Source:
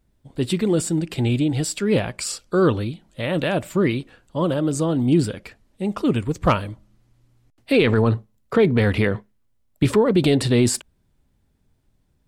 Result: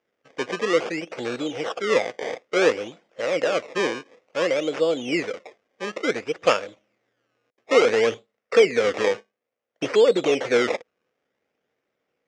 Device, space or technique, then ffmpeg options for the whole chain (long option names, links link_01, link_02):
circuit-bent sampling toy: -af "acrusher=samples=22:mix=1:aa=0.000001:lfo=1:lforange=22:lforate=0.57,highpass=490,equalizer=frequency=490:width_type=q:width=4:gain=10,equalizer=frequency=960:width_type=q:width=4:gain=-7,equalizer=frequency=2100:width_type=q:width=4:gain=4,equalizer=frequency=4200:width_type=q:width=4:gain=-7,lowpass=frequency=6000:width=0.5412,lowpass=frequency=6000:width=1.3066"